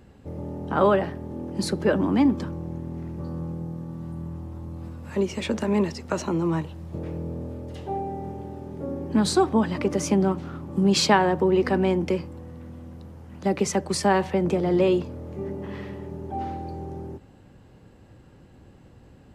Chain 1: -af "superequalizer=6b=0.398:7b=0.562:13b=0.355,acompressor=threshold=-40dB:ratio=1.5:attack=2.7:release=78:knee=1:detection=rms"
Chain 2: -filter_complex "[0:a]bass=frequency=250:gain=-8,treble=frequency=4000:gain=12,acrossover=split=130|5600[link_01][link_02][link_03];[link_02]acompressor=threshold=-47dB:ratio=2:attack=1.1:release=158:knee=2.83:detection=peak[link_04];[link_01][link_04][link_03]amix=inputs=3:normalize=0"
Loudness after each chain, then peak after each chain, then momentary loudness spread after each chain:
−34.5, −31.0 LKFS; −16.0, −7.5 dBFS; 14, 20 LU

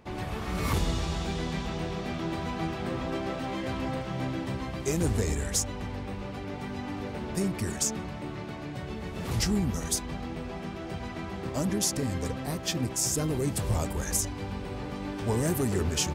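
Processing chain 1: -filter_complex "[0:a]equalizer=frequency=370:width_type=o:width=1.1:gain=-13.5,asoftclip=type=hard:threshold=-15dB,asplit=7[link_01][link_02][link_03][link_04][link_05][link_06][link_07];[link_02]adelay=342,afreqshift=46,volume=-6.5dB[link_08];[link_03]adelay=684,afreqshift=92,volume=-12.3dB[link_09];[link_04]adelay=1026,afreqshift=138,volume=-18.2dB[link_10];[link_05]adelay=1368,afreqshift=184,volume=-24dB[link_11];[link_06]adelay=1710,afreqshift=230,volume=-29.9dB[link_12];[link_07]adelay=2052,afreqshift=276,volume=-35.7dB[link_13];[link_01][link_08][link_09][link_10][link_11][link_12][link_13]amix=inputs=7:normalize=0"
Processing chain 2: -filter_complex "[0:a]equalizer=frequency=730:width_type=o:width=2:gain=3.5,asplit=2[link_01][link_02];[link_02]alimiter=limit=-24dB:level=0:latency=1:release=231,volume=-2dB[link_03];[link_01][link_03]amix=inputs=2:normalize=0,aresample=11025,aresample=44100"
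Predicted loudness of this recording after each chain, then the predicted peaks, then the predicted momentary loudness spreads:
−32.0, −27.5 LKFS; −14.0, −11.0 dBFS; 10, 6 LU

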